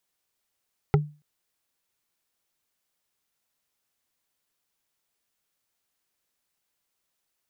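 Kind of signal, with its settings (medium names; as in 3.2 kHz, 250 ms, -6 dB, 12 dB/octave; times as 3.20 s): wood hit, length 0.28 s, lowest mode 149 Hz, decay 0.32 s, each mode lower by 3 dB, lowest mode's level -13.5 dB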